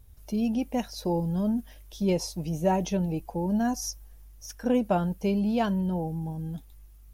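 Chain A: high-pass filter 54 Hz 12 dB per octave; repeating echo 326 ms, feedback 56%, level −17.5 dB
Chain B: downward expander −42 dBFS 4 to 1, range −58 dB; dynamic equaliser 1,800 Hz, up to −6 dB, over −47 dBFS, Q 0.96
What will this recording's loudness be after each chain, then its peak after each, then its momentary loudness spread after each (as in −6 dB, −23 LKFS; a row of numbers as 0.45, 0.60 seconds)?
−28.5, −29.0 LKFS; −13.0, −13.0 dBFS; 11, 10 LU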